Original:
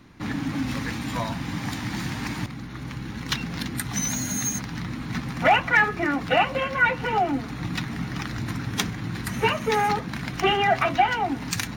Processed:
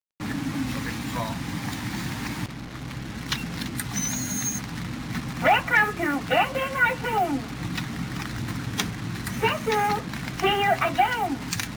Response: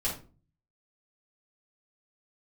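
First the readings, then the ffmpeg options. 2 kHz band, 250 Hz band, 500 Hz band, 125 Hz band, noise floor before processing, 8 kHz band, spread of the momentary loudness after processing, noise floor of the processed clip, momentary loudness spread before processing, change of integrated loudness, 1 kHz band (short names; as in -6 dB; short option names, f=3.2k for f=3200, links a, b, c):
-1.0 dB, -1.0 dB, -1.0 dB, -1.0 dB, -36 dBFS, -0.5 dB, 10 LU, -36 dBFS, 11 LU, -1.0 dB, -1.0 dB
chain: -af "acrusher=bits=5:mix=0:aa=0.5,volume=-1dB"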